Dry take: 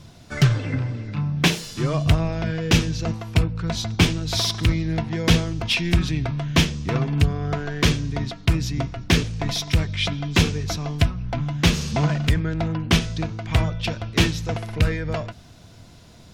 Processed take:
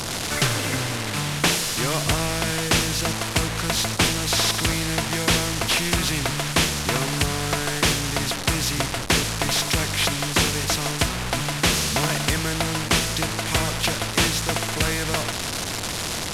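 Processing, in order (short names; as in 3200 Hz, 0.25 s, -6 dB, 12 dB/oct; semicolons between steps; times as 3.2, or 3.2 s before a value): delta modulation 64 kbps, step -31.5 dBFS; spectral compressor 2:1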